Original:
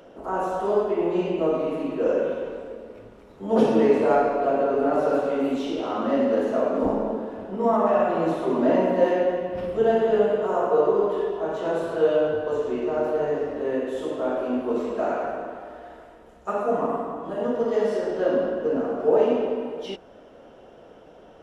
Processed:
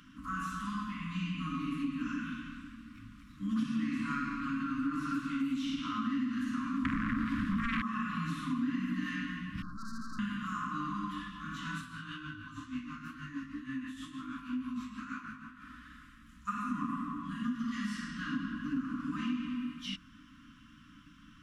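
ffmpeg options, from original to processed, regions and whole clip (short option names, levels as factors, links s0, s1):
-filter_complex "[0:a]asettb=1/sr,asplit=3[s0][s1][s2];[s0]atrim=end=6.854[s3];[s1]atrim=start=6.85:end=7.82,asetpts=PTS-STARTPTS,afade=t=in:d=0.004:c=qsin,afade=t=out:st=0.966:d=0.004:c=qsin,acompressor=threshold=0.0398:ratio=12:attack=3.2:release=140:knee=1:detection=peak,aeval=exprs='0.168*sin(PI/2*5.62*val(0)/0.168)':c=same[s4];[s2]atrim=start=7.816[s5];[s3][s4]acrossfade=d=0.004:c1=hsin:c2=qsin[s6];[s6][s5]acrossfade=d=0.004:c1=qsin:c2=hsin,asettb=1/sr,asplit=3[s7][s8][s9];[s7]atrim=end=9.624[s10];[s8]atrim=start=9.62:end=10.19,asetpts=PTS-STARTPTS,afade=t=in:d=0.004:c=qsin,afade=t=out:st=0.566:d=0.004:c=qsin,highshelf=f=3600:g=-11.5,aeval=exprs='(tanh(44.7*val(0)+0.5)-tanh(0.5))/44.7':c=same,asuperstop=centerf=2600:order=12:qfactor=0.95[s11];[s9]atrim=start=10.186[s12];[s10][s11]acrossfade=d=0.004:c1=hsin:c2=qsin[s13];[s13][s12]acrossfade=d=0.004:c1=qsin:c2=hsin,asettb=1/sr,asplit=3[s14][s15][s16];[s14]atrim=end=11.814[s17];[s15]atrim=start=11.81:end=15.62,asetpts=PTS-STARTPTS,afade=t=in:d=0.004:c=qsin,afade=t=out:st=3.806:d=0.004:c=qsin,bandreject=f=60:t=h:w=6,bandreject=f=120:t=h:w=6,bandreject=f=180:t=h:w=6,bandreject=f=240:t=h:w=6,bandreject=f=300:t=h:w=6,bandreject=f=360:t=h:w=6,bandreject=f=420:t=h:w=6,flanger=delay=15:depth=3.9:speed=2.1,tremolo=f=6.3:d=0.55[s18];[s16]atrim=start=15.616[s19];[s17][s18]acrossfade=d=0.004:c1=hsin:c2=qsin[s20];[s20][s19]acrossfade=d=0.004:c1=qsin:c2=hsin,afftfilt=real='re*(1-between(b*sr/4096,310,1000))':imag='im*(1-between(b*sr/4096,310,1000))':win_size=4096:overlap=0.75,equalizer=f=720:w=1.4:g=-8.5,acompressor=threshold=0.0282:ratio=4"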